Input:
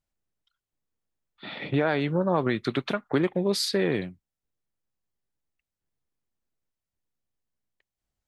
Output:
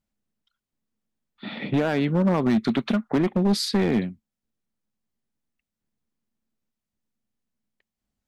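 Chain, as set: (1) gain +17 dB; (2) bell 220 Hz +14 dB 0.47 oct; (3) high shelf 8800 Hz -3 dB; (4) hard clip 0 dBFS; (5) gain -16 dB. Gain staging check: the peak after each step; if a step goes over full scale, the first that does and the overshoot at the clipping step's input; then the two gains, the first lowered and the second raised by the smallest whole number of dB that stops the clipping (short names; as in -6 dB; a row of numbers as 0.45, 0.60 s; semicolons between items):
+5.5, +8.5, +8.5, 0.0, -16.0 dBFS; step 1, 8.5 dB; step 1 +8 dB, step 5 -7 dB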